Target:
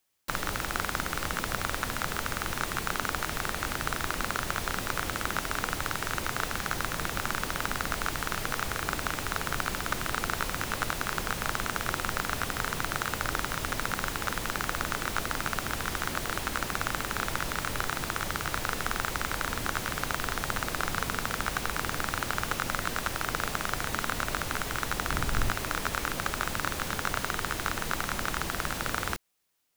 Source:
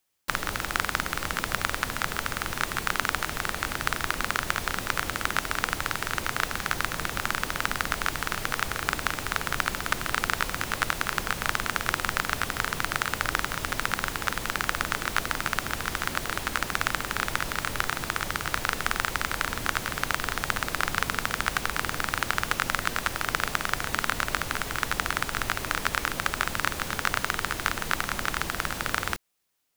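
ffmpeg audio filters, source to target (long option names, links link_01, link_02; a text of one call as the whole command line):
ffmpeg -i in.wav -filter_complex "[0:a]asettb=1/sr,asplit=3[link_01][link_02][link_03];[link_01]atrim=end=25.104[link_04];[link_02]atrim=start=25.1:end=25.52,asetpts=PTS-STARTPTS,afade=type=in:duration=0.004:curve=qsin,afade=type=out:start_time=0.416:duration=0.004:curve=qsin,lowshelf=frequency=180:gain=10[link_05];[link_03]atrim=start=25.516[link_06];[link_04][link_05]acrossfade=duration=0.004:curve1=hsin:curve2=qsin[link_07];[link_07][link_06]acrossfade=duration=0.004:curve1=qsin:curve2=hsin,acrossover=split=950[link_08][link_09];[link_09]asoftclip=type=tanh:threshold=-20.5dB[link_10];[link_08][link_10]amix=inputs=2:normalize=0" out.wav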